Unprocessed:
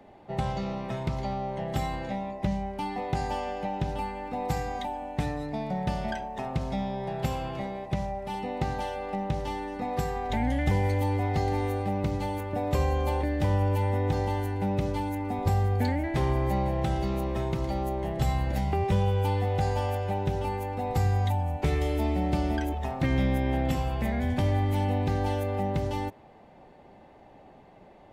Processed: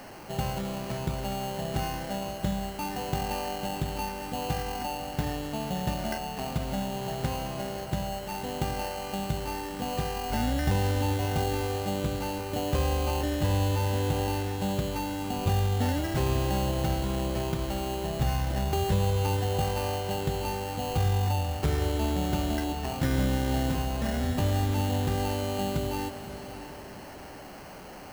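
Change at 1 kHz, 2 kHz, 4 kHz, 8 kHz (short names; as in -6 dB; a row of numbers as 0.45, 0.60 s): -1.0, +0.5, +6.5, +9.5 dB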